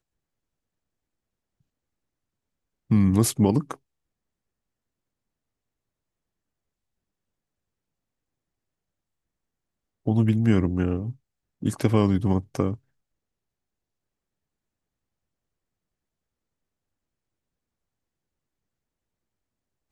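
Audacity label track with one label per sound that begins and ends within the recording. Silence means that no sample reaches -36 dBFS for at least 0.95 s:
2.900000	3.740000	sound
10.070000	12.750000	sound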